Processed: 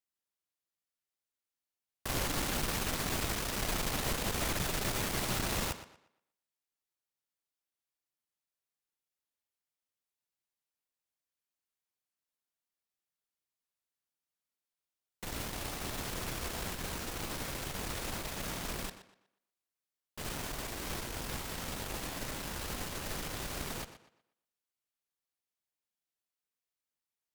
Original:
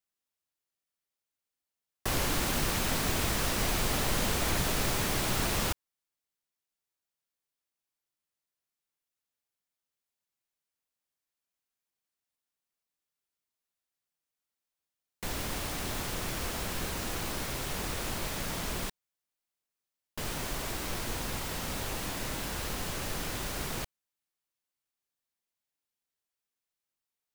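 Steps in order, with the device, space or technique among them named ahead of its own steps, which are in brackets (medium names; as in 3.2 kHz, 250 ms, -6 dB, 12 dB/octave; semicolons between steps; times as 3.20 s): rockabilly slapback (valve stage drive 26 dB, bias 0.75; tape echo 120 ms, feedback 33%, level -11 dB, low-pass 5.6 kHz)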